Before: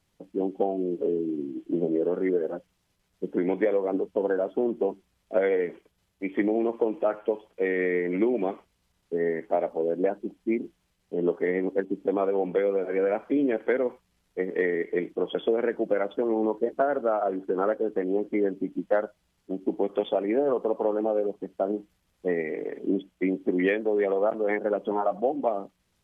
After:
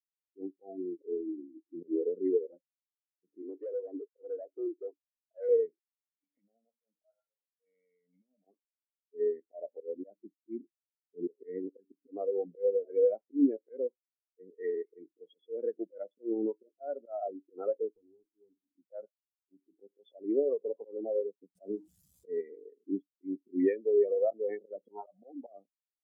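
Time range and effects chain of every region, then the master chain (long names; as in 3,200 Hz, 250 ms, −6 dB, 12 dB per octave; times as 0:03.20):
0:03.42–0:05.49: Butterworth high-pass 270 Hz 72 dB per octave + gain into a clipping stage and back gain 25 dB
0:06.24–0:08.45: downward compressor, threshold −38 dBFS + comb filter 1.4 ms, depth 86%
0:17.94–0:18.71: downward compressor 16 to 1, threshold −33 dBFS + mains-hum notches 60/120/180/240/300 Hz + windowed peak hold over 17 samples
0:21.55–0:22.41: converter with a step at zero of −31.5 dBFS + high-pass filter 67 Hz
whole clip: bass and treble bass +2 dB, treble +14 dB; volume swells 104 ms; every bin expanded away from the loudest bin 2.5 to 1; level −4 dB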